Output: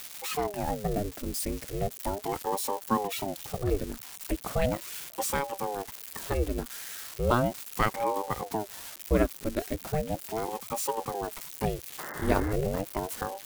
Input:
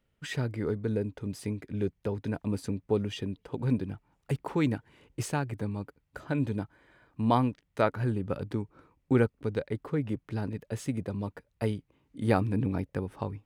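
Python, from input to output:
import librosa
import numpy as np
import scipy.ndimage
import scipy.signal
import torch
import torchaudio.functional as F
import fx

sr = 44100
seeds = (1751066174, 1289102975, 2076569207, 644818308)

y = x + 0.5 * 10.0 ** (-28.0 / 20.0) * np.diff(np.sign(x), prepend=np.sign(x[:1]))
y = fx.spec_paint(y, sr, seeds[0], shape='noise', start_s=11.98, length_s=0.55, low_hz=270.0, high_hz=2000.0, level_db=-40.0)
y = fx.ring_lfo(y, sr, carrier_hz=410.0, swing_pct=70, hz=0.37)
y = y * 10.0 ** (3.0 / 20.0)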